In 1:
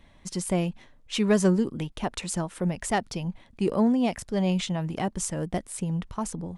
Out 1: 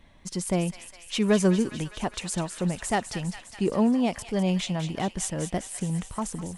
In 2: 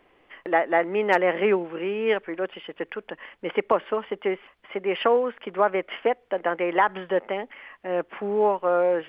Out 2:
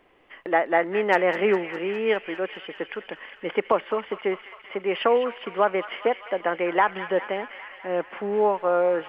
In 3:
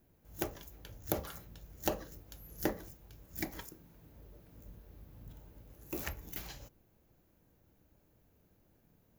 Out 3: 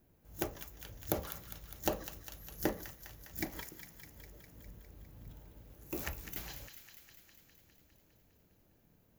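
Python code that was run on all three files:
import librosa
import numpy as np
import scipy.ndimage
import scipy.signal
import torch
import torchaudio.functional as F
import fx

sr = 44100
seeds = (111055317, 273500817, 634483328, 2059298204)

y = fx.echo_wet_highpass(x, sr, ms=203, feedback_pct=71, hz=1500.0, wet_db=-8.5)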